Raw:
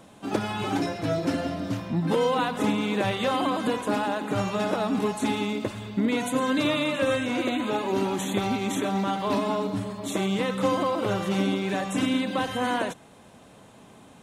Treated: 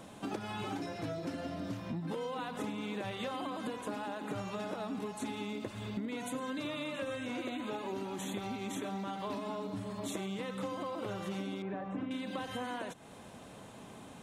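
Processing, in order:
0:11.62–0:12.11: low-pass filter 1,400 Hz 12 dB per octave
downward compressor 8 to 1, threshold −36 dBFS, peak gain reduction 16.5 dB

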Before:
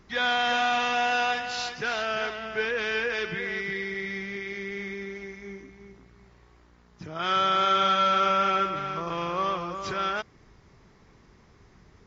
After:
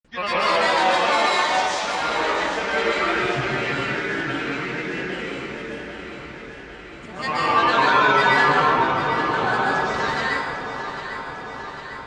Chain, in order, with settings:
granular cloud, pitch spread up and down by 7 semitones
on a send: delay that swaps between a low-pass and a high-pass 400 ms, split 890 Hz, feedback 80%, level −8 dB
on the sum: dense smooth reverb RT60 1.2 s, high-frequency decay 0.75×, pre-delay 115 ms, DRR −6 dB

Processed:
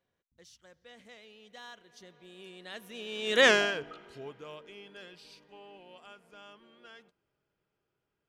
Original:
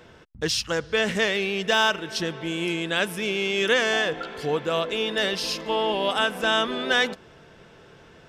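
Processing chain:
source passing by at 0:03.48, 30 m/s, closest 1.9 metres
level +2.5 dB

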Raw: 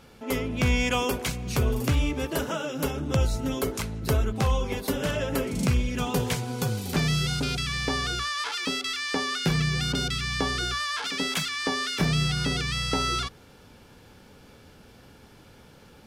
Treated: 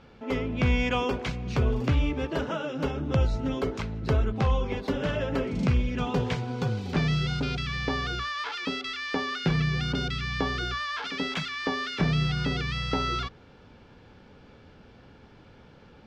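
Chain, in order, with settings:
high-frequency loss of the air 190 metres

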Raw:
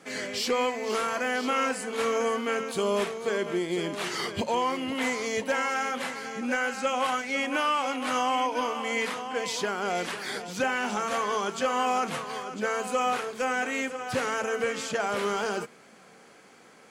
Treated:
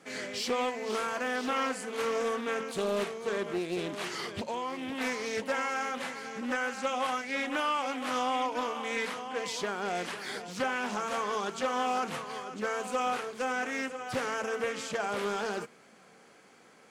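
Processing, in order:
0:04.05–0:05.01: downward compressor 2.5 to 1, threshold −29 dBFS, peak gain reduction 5 dB
highs frequency-modulated by the lows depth 0.39 ms
level −4 dB

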